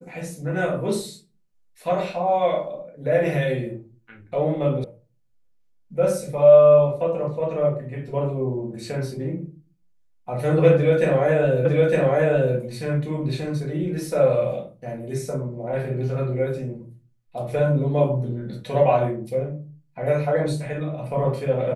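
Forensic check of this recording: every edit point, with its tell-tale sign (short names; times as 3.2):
4.84 sound cut off
11.65 repeat of the last 0.91 s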